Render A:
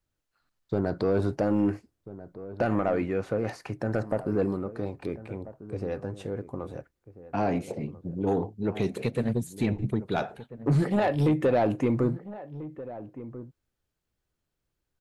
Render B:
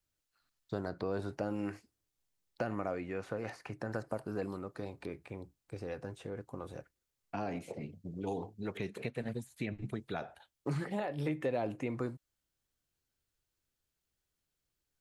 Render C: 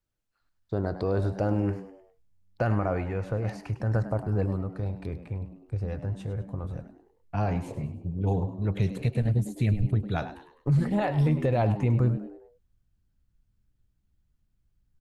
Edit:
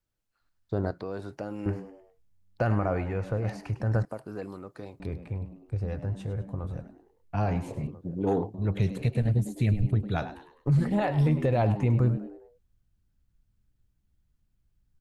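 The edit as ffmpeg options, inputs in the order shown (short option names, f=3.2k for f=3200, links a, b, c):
-filter_complex "[1:a]asplit=2[a][b];[2:a]asplit=4[c][d][e][f];[c]atrim=end=0.912[g];[a]atrim=start=0.908:end=1.662[h];[d]atrim=start=1.658:end=4.052[i];[b]atrim=start=4.048:end=5.002[j];[e]atrim=start=4.998:end=7.872[k];[0:a]atrim=start=7.868:end=8.542[l];[f]atrim=start=8.538[m];[g][h]acrossfade=d=0.004:c1=hsin:c2=hsin[n];[n][i]acrossfade=d=0.004:c1=hsin:c2=hsin[o];[o][j]acrossfade=d=0.004:c1=hsin:c2=hsin[p];[p][k]acrossfade=d=0.004:c1=hsin:c2=hsin[q];[q][l]acrossfade=d=0.004:c1=hsin:c2=hsin[r];[r][m]acrossfade=d=0.004:c1=hsin:c2=hsin"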